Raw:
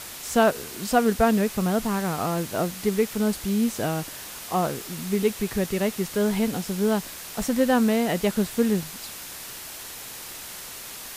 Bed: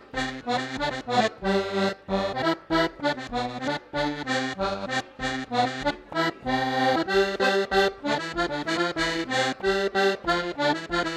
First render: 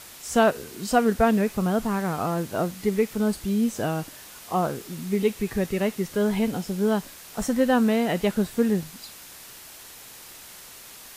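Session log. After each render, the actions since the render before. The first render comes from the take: noise print and reduce 6 dB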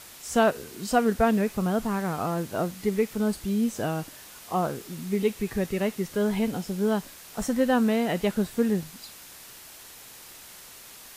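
gain -2 dB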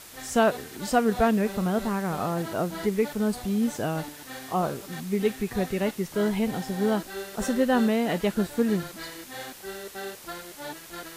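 add bed -14.5 dB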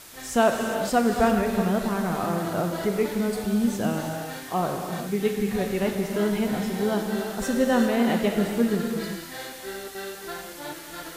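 non-linear reverb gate 0.43 s flat, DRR 2.5 dB

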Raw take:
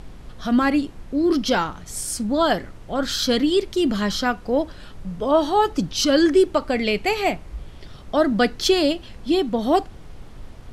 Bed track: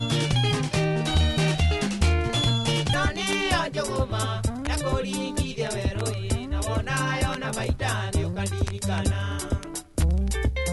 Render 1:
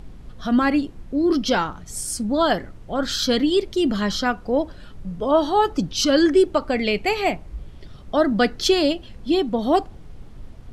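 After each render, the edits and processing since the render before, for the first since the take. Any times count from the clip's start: denoiser 6 dB, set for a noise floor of -42 dBFS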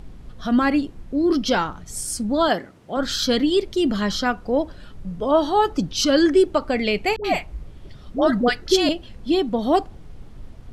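2.48–2.97 HPF 170 Hz; 7.16–8.89 dispersion highs, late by 85 ms, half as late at 550 Hz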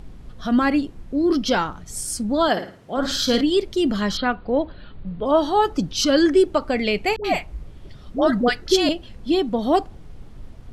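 2.51–3.41 flutter echo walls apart 9.4 m, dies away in 0.41 s; 4.17–5.26 steep low-pass 4500 Hz 96 dB/oct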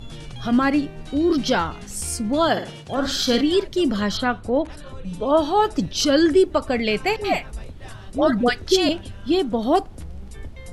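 add bed track -15 dB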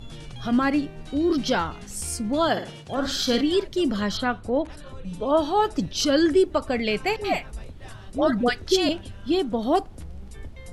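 gain -3 dB

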